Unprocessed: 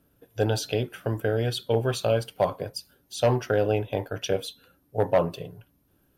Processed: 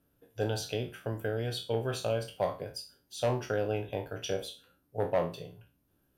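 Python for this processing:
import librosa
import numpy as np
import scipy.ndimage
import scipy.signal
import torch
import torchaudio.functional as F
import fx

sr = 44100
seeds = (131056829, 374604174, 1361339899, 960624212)

y = fx.spec_trails(x, sr, decay_s=0.33)
y = F.gain(torch.from_numpy(y), -8.0).numpy()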